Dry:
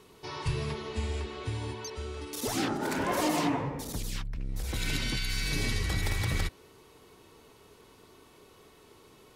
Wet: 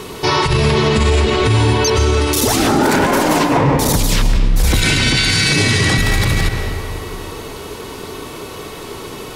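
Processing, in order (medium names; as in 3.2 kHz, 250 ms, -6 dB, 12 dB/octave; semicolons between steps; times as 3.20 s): 4.82–5.98 s: elliptic band-pass 100–9800 Hz, stop band 40 dB; compressor with a negative ratio -32 dBFS, ratio -0.5; algorithmic reverb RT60 2.4 s, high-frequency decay 0.6×, pre-delay 90 ms, DRR 7 dB; loudness maximiser +28.5 dB; trim -4 dB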